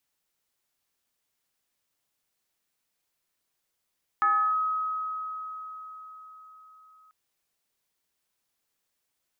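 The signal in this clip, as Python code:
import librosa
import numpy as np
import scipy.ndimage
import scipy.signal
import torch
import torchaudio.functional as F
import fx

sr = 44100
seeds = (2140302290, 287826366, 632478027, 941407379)

y = fx.fm2(sr, length_s=2.89, level_db=-19.0, carrier_hz=1270.0, ratio=0.36, index=0.58, index_s=0.34, decay_s=4.8, shape='linear')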